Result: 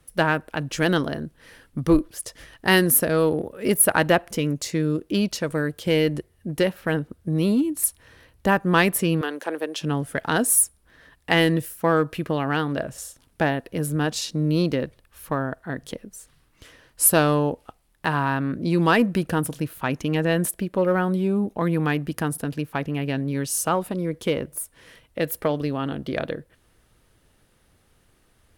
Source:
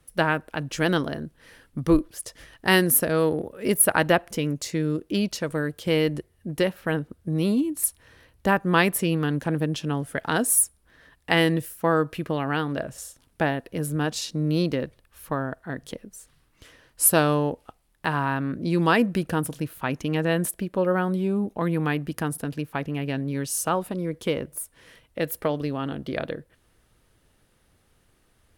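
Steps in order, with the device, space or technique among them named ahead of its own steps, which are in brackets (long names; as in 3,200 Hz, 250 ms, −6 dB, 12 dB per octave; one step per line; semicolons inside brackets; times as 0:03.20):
0:09.21–0:09.81: high-pass filter 370 Hz 24 dB per octave
parallel distortion (in parallel at −10.5 dB: hard clipping −18.5 dBFS, distortion −10 dB)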